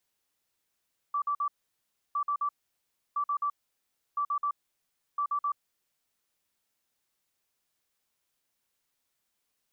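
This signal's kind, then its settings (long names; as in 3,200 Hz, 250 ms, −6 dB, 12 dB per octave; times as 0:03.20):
beeps in groups sine 1,160 Hz, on 0.08 s, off 0.05 s, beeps 3, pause 0.67 s, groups 5, −26 dBFS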